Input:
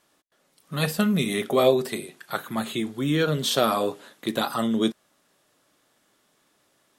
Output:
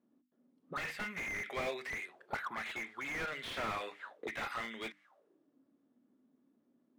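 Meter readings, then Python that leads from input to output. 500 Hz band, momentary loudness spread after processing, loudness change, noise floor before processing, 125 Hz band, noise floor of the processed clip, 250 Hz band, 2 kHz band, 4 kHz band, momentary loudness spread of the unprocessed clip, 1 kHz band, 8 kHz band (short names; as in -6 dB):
-20.0 dB, 6 LU, -15.0 dB, -67 dBFS, -24.0 dB, -76 dBFS, -24.5 dB, -4.5 dB, -17.0 dB, 12 LU, -12.0 dB, -18.5 dB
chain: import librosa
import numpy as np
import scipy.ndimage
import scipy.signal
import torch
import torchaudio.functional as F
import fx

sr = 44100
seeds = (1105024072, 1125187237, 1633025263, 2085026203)

y = fx.auto_wah(x, sr, base_hz=240.0, top_hz=2100.0, q=8.2, full_db=-26.0, direction='up')
y = fx.hum_notches(y, sr, base_hz=50, count=6)
y = fx.slew_limit(y, sr, full_power_hz=6.8)
y = y * 10.0 ** (11.0 / 20.0)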